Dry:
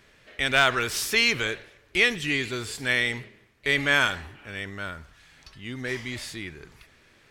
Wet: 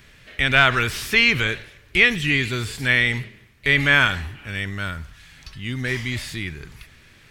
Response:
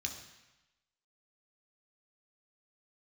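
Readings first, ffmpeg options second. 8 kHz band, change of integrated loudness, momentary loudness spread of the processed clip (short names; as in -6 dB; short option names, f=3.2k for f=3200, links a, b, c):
-2.0 dB, +5.0 dB, 16 LU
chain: -filter_complex "[0:a]acrossover=split=3300[a][b];[b]acompressor=threshold=-41dB:ratio=4:attack=1:release=60[c];[a][c]amix=inputs=2:normalize=0,crystalizer=i=8.5:c=0,bass=f=250:g=13,treble=f=4k:g=-12,volume=-1dB"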